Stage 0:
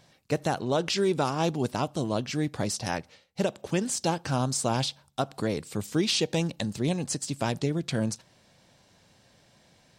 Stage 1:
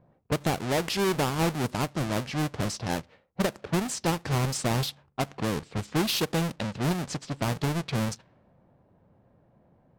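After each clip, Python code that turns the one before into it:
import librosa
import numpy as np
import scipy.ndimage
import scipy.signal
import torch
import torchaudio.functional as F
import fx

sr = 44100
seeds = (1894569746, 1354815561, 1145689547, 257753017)

y = fx.halfwave_hold(x, sr)
y = fx.env_lowpass(y, sr, base_hz=810.0, full_db=-20.0)
y = F.gain(torch.from_numpy(y), -4.5).numpy()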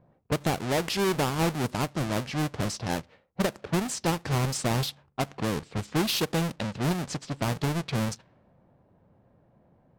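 y = x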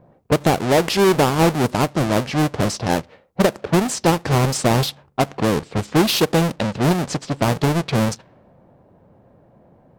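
y = fx.peak_eq(x, sr, hz=500.0, db=4.5, octaves=2.3)
y = F.gain(torch.from_numpy(y), 7.5).numpy()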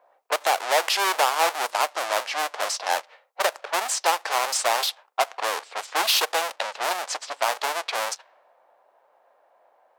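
y = scipy.signal.sosfilt(scipy.signal.butter(4, 680.0, 'highpass', fs=sr, output='sos'), x)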